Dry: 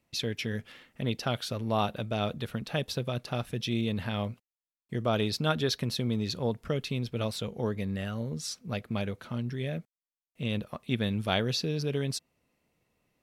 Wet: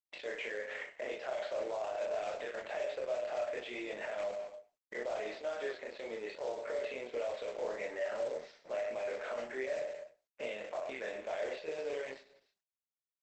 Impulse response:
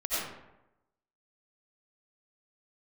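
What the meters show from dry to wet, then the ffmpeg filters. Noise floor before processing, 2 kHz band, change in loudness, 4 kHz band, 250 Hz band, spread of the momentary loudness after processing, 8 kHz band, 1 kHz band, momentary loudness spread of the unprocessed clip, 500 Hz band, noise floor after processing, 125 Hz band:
below −85 dBFS, −3.5 dB, −7.5 dB, −16.0 dB, −19.5 dB, 6 LU, −14.5 dB, −7.5 dB, 7 LU, −1.5 dB, below −85 dBFS, below −35 dB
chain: -filter_complex "[0:a]crystalizer=i=3.5:c=0,aeval=exprs='sgn(val(0))*max(abs(val(0))-0.00266,0)':channel_layout=same,aecho=1:1:97|194|291:0.158|0.0555|0.0194,acompressor=threshold=-40dB:ratio=16,highpass=frequency=430:width=0.5412,highpass=frequency=430:width=1.3066,equalizer=frequency=600:width_type=q:width=4:gain=9,equalizer=frequency=1200:width_type=q:width=4:gain=-8,equalizer=frequency=2000:width_type=q:width=4:gain=6,lowpass=frequency=2200:width=0.5412,lowpass=frequency=2200:width=1.3066,acrusher=bits=3:mode=log:mix=0:aa=0.000001,equalizer=frequency=800:width_type=o:width=2.1:gain=3.5,asplit=2[link_01][link_02];[link_02]adelay=38,volume=-2.5dB[link_03];[link_01][link_03]amix=inputs=2:normalize=0,asplit=2[link_04][link_05];[1:a]atrim=start_sample=2205,atrim=end_sample=6174[link_06];[link_05][link_06]afir=irnorm=-1:irlink=0,volume=-29dB[link_07];[link_04][link_07]amix=inputs=2:normalize=0,alimiter=level_in=15dB:limit=-24dB:level=0:latency=1:release=19,volume=-15dB,flanger=delay=22.5:depth=4.1:speed=0.74,volume=13dB" -ar 48000 -c:a libopus -b:a 12k

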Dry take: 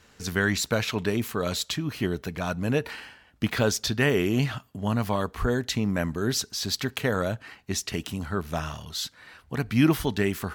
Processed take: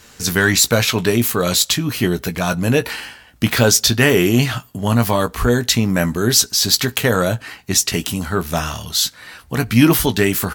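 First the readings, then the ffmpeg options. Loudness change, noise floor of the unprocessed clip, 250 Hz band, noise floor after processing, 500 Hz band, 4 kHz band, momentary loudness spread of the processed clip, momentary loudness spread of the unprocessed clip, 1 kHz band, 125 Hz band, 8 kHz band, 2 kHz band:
+11.0 dB, −58 dBFS, +9.0 dB, −46 dBFS, +9.5 dB, +13.0 dB, 9 LU, 10 LU, +9.5 dB, +9.5 dB, +16.0 dB, +10.0 dB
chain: -filter_complex "[0:a]highshelf=frequency=5400:gain=11,acontrast=81,asplit=2[link_01][link_02];[link_02]adelay=17,volume=-9dB[link_03];[link_01][link_03]amix=inputs=2:normalize=0,volume=2dB"

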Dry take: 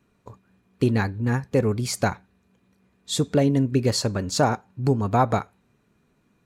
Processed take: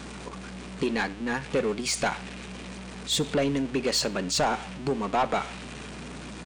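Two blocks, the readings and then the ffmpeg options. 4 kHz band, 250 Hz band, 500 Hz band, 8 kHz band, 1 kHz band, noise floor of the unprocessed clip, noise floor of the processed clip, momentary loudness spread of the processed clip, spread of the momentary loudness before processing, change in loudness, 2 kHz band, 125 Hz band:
+2.0 dB, −5.5 dB, −3.5 dB, +0.5 dB, −2.5 dB, −67 dBFS, −41 dBFS, 14 LU, 6 LU, −4.0 dB, +1.5 dB, −13.0 dB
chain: -filter_complex "[0:a]aeval=exprs='val(0)+0.5*0.0188*sgn(val(0))':channel_layout=same,acrossover=split=330|3000[link_01][link_02][link_03];[link_01]acompressor=threshold=-27dB:ratio=6[link_04];[link_04][link_02][link_03]amix=inputs=3:normalize=0,afftfilt=real='re*between(b*sr/4096,130,9900)':imag='im*between(b*sr/4096,130,9900)':win_size=4096:overlap=0.75,adynamicequalizer=threshold=0.00501:dfrequency=2700:dqfactor=1.5:tfrequency=2700:tqfactor=1.5:attack=5:release=100:ratio=0.375:range=3.5:mode=boostabove:tftype=bell,asoftclip=type=tanh:threshold=-18.5dB,aeval=exprs='val(0)+0.00562*(sin(2*PI*60*n/s)+sin(2*PI*2*60*n/s)/2+sin(2*PI*3*60*n/s)/3+sin(2*PI*4*60*n/s)/4+sin(2*PI*5*60*n/s)/5)':channel_layout=same,asplit=2[link_05][link_06];[link_06]aecho=0:1:70|140:0.0708|0.0234[link_07];[link_05][link_07]amix=inputs=2:normalize=0"

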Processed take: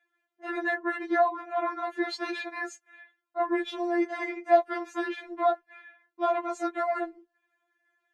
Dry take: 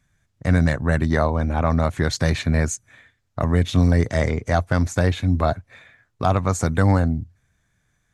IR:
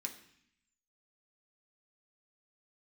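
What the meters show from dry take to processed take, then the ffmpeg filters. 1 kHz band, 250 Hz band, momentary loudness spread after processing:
−1.5 dB, −10.0 dB, 12 LU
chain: -filter_complex "[0:a]highpass=frequency=110:width=0.5412,highpass=frequency=110:width=1.3066,acrossover=split=250 3100:gain=0.0708 1 0.112[link_01][link_02][link_03];[link_01][link_02][link_03]amix=inputs=3:normalize=0,afftfilt=real='re*4*eq(mod(b,16),0)':imag='im*4*eq(mod(b,16),0)':win_size=2048:overlap=0.75"

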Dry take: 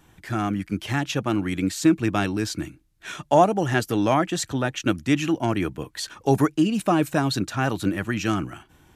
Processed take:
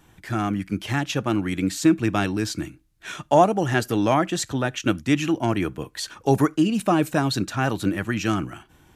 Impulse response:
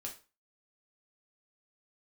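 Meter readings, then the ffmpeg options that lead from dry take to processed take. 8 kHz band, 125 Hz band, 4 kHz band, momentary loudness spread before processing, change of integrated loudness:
+0.5 dB, +0.5 dB, +0.5 dB, 10 LU, +0.5 dB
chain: -filter_complex "[0:a]asplit=2[link_01][link_02];[1:a]atrim=start_sample=2205,atrim=end_sample=3969,asetrate=38808,aresample=44100[link_03];[link_02][link_03]afir=irnorm=-1:irlink=0,volume=-18.5dB[link_04];[link_01][link_04]amix=inputs=2:normalize=0"

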